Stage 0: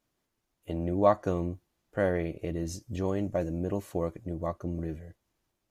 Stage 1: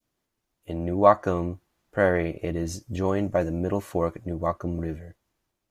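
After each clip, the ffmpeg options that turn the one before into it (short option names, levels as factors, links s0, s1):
-af "adynamicequalizer=threshold=0.00794:dfrequency=1300:dqfactor=0.74:tfrequency=1300:tqfactor=0.74:attack=5:release=100:ratio=0.375:range=3.5:mode=boostabove:tftype=bell,dynaudnorm=f=140:g=9:m=1.58"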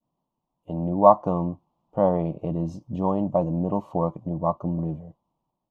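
-af "firequalizer=gain_entry='entry(100,0);entry(150,13);entry(390,1);entry(560,7);entry(980,14);entry(1600,-22);entry(2900,-4);entry(4100,-9);entry(10000,-20)':delay=0.05:min_phase=1,volume=0.501"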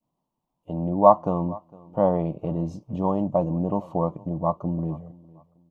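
-af "aecho=1:1:457|914:0.075|0.0217"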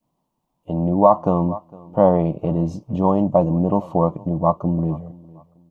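-af "alimiter=level_in=2.37:limit=0.891:release=50:level=0:latency=1,volume=0.891"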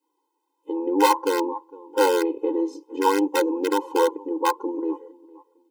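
-filter_complex "[0:a]asplit=2[s0][s1];[s1]aeval=exprs='(mod(2.51*val(0)+1,2)-1)/2.51':c=same,volume=0.473[s2];[s0][s2]amix=inputs=2:normalize=0,afftfilt=real='re*eq(mod(floor(b*sr/1024/270),2),1)':imag='im*eq(mod(floor(b*sr/1024/270),2),1)':win_size=1024:overlap=0.75"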